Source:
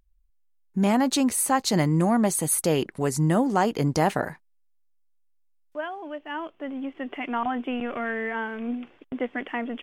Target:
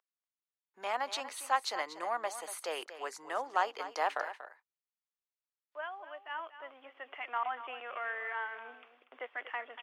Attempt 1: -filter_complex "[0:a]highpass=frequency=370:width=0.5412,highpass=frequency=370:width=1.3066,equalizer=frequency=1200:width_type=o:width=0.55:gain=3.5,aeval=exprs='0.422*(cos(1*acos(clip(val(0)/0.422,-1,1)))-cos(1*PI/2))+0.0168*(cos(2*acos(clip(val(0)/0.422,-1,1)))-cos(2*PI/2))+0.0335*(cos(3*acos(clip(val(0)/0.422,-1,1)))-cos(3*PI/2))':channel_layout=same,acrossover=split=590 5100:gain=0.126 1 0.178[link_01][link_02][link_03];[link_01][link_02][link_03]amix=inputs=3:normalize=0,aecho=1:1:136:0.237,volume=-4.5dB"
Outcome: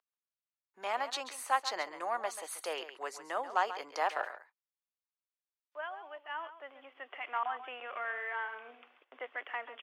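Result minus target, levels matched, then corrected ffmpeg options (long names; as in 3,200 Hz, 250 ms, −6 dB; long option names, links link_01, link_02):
echo 102 ms early
-filter_complex "[0:a]highpass=frequency=370:width=0.5412,highpass=frequency=370:width=1.3066,equalizer=frequency=1200:width_type=o:width=0.55:gain=3.5,aeval=exprs='0.422*(cos(1*acos(clip(val(0)/0.422,-1,1)))-cos(1*PI/2))+0.0168*(cos(2*acos(clip(val(0)/0.422,-1,1)))-cos(2*PI/2))+0.0335*(cos(3*acos(clip(val(0)/0.422,-1,1)))-cos(3*PI/2))':channel_layout=same,acrossover=split=590 5100:gain=0.126 1 0.178[link_01][link_02][link_03];[link_01][link_02][link_03]amix=inputs=3:normalize=0,aecho=1:1:238:0.237,volume=-4.5dB"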